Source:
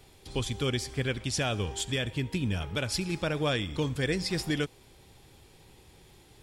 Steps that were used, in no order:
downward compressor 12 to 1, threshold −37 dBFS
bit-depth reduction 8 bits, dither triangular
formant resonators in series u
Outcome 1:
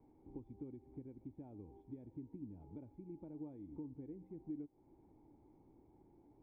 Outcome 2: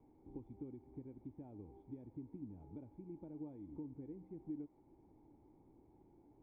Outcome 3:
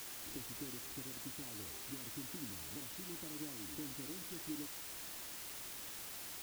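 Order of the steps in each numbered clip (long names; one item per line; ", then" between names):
bit-depth reduction, then downward compressor, then formant resonators in series
downward compressor, then bit-depth reduction, then formant resonators in series
downward compressor, then formant resonators in series, then bit-depth reduction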